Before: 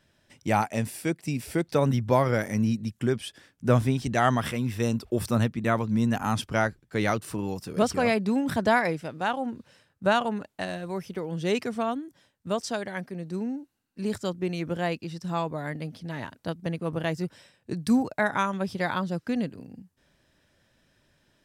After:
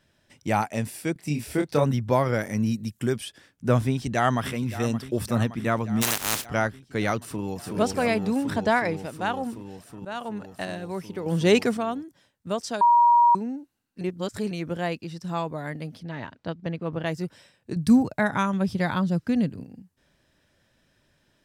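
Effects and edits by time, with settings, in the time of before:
1.13–1.84 s: doubling 27 ms -4 dB
2.65–3.23 s: treble shelf 10 kHz -> 6.2 kHz +11.5 dB
3.88–4.52 s: echo throw 570 ms, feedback 75%, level -14 dB
6.01–6.44 s: spectral contrast reduction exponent 0.19
7.18–7.59 s: echo throw 370 ms, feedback 85%, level -2.5 dB
8.45–8.97 s: peaking EQ 12 kHz -8.5 dB 0.59 oct
10.05–10.51 s: fade in linear, from -19 dB
11.26–11.77 s: gain +7.5 dB
12.81–13.35 s: bleep 952 Hz -13.5 dBFS
14.01–14.51 s: reverse
16.03–17.06 s: low-pass 4.3 kHz
17.76–19.64 s: tone controls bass +9 dB, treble +1 dB

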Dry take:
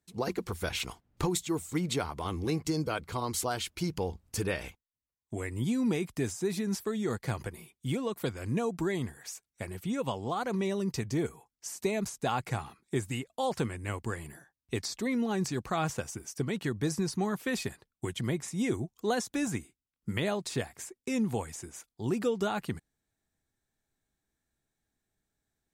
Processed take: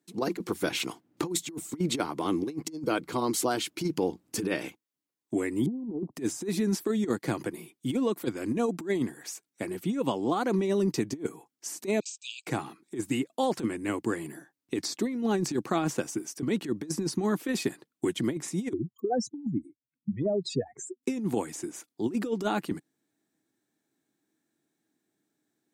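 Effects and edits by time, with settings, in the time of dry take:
5.66–6.15 s: steep low-pass 930 Hz 48 dB/octave
12.00–12.47 s: brick-wall FIR band-pass 2.3–8.4 kHz
18.73–21.03 s: spectral contrast enhancement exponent 3.5
whole clip: high-pass 140 Hz 24 dB/octave; peaking EQ 310 Hz +13 dB 0.57 oct; compressor with a negative ratio -27 dBFS, ratio -0.5

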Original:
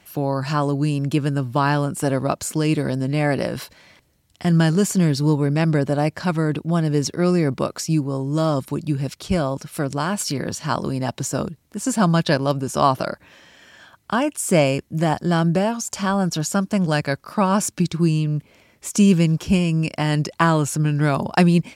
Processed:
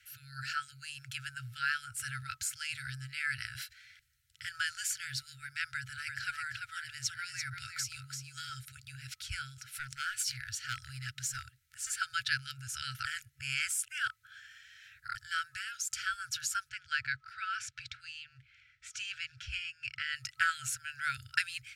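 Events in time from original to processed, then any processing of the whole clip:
5.64–8.50 s: delay 340 ms -6 dB
9.70–11.90 s: overload inside the chain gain 17 dB
13.05–15.15 s: reverse
16.69–20.16 s: low-pass 4.1 kHz
whole clip: tilt shelf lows +3 dB, about 1.5 kHz; FFT band-reject 130–1300 Hz; resonant low shelf 330 Hz -11 dB, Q 1.5; trim -5 dB

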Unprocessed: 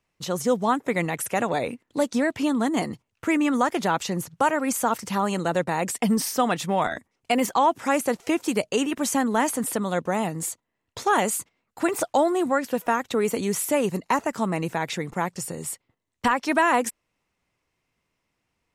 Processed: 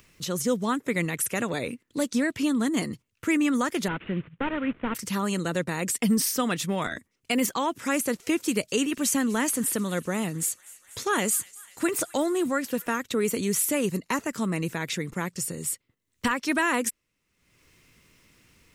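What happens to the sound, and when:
3.88–4.95 s: CVSD coder 16 kbps
8.06–12.98 s: feedback echo behind a high-pass 246 ms, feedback 71%, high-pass 1.8 kHz, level -20 dB
whole clip: treble shelf 8.2 kHz +5 dB; upward compressor, threshold -42 dBFS; peaking EQ 780 Hz -12 dB 0.92 oct

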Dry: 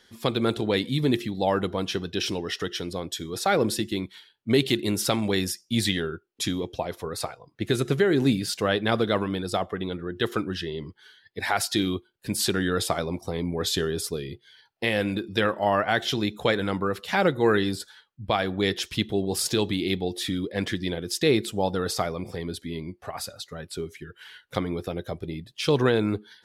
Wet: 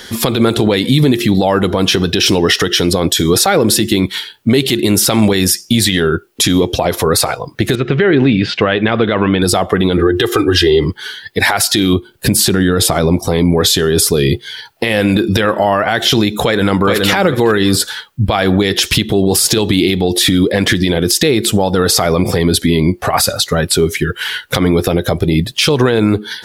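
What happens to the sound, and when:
7.75–9.42 s: four-pole ladder low-pass 3.3 kHz, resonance 35%
9.97–10.85 s: comb 2.5 ms, depth 94%
11.93–13.20 s: bass shelf 460 Hz +6.5 dB
16.42–17.09 s: echo throw 420 ms, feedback 15%, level -9 dB
whole clip: treble shelf 11 kHz +7.5 dB; compression 10:1, threshold -29 dBFS; loudness maximiser +26.5 dB; trim -1 dB

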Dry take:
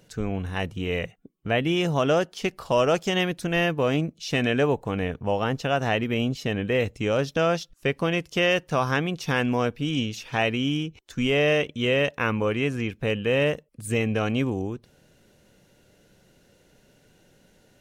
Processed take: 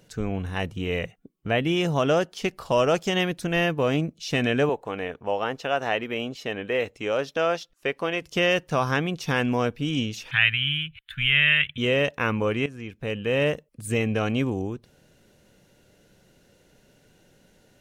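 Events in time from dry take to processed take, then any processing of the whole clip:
4.69–8.22 s: tone controls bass -14 dB, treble -5 dB
10.31–11.78 s: FFT filter 140 Hz 0 dB, 240 Hz -21 dB, 450 Hz -26 dB, 890 Hz -14 dB, 1.6 kHz +8 dB, 3.5 kHz +8 dB, 5.8 kHz -27 dB, 10 kHz -2 dB
12.66–13.47 s: fade in, from -14 dB

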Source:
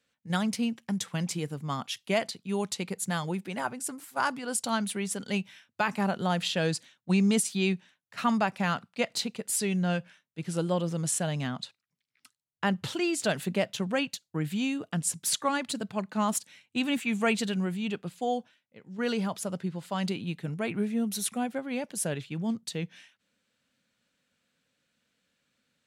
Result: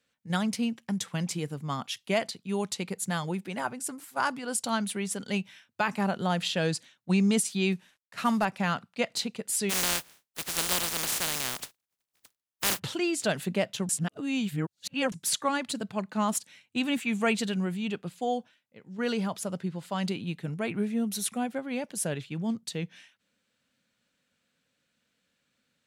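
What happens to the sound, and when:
7.72–8.45 s: CVSD coder 64 kbps
9.69–12.78 s: spectral contrast reduction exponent 0.15
13.89–15.12 s: reverse

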